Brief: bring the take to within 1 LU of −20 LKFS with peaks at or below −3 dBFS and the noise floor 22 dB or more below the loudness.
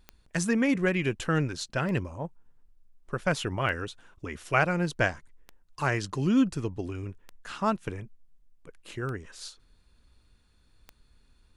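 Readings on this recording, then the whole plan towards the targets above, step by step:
number of clicks 7; integrated loudness −29.0 LKFS; sample peak −9.5 dBFS; target loudness −20.0 LKFS
→ click removal
level +9 dB
brickwall limiter −3 dBFS

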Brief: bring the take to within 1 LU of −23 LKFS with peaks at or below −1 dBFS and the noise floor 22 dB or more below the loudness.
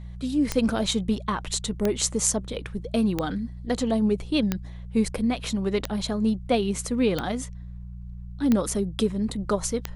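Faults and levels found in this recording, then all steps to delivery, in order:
number of clicks 8; mains hum 60 Hz; hum harmonics up to 180 Hz; level of the hum −36 dBFS; integrated loudness −26.0 LKFS; sample peak −5.0 dBFS; target loudness −23.0 LKFS
→ click removal
hum removal 60 Hz, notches 3
level +3 dB

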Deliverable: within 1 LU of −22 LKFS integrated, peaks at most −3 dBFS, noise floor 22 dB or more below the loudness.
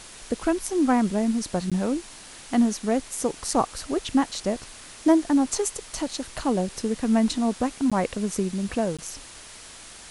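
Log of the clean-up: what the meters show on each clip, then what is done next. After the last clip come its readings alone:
number of dropouts 3; longest dropout 16 ms; background noise floor −44 dBFS; target noise floor −48 dBFS; integrated loudness −25.5 LKFS; sample peak −8.0 dBFS; target loudness −22.0 LKFS
→ repair the gap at 0:01.70/0:07.90/0:08.97, 16 ms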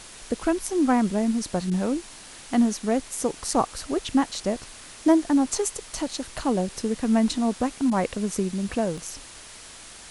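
number of dropouts 0; background noise floor −44 dBFS; target noise floor −48 dBFS
→ noise reduction from a noise print 6 dB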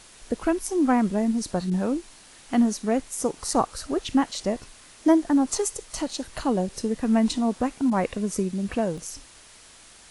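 background noise floor −50 dBFS; integrated loudness −25.5 LKFS; sample peak −8.0 dBFS; target loudness −22.0 LKFS
→ level +3.5 dB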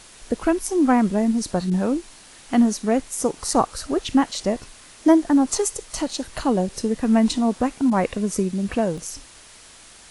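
integrated loudness −22.0 LKFS; sample peak −4.5 dBFS; background noise floor −47 dBFS

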